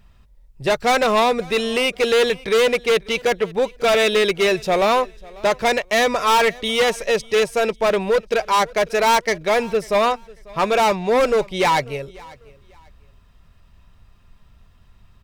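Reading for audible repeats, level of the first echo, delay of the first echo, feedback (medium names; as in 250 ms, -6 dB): 2, -23.0 dB, 544 ms, 27%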